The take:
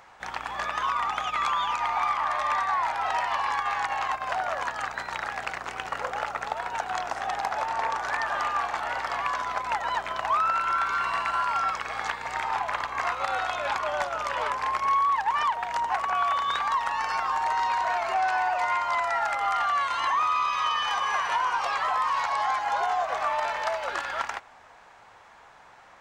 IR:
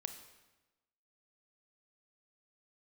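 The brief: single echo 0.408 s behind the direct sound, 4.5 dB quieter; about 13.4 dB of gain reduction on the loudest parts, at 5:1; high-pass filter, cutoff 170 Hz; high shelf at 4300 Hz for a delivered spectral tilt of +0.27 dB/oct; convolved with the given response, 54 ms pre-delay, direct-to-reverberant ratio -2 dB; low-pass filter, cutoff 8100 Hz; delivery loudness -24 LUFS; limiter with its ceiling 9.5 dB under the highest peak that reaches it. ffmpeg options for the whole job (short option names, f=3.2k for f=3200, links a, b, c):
-filter_complex "[0:a]highpass=170,lowpass=8.1k,highshelf=f=4.3k:g=8.5,acompressor=threshold=-37dB:ratio=5,alimiter=level_in=8dB:limit=-24dB:level=0:latency=1,volume=-8dB,aecho=1:1:408:0.596,asplit=2[a][b];[1:a]atrim=start_sample=2205,adelay=54[c];[b][c]afir=irnorm=-1:irlink=0,volume=4.5dB[d];[a][d]amix=inputs=2:normalize=0,volume=11dB"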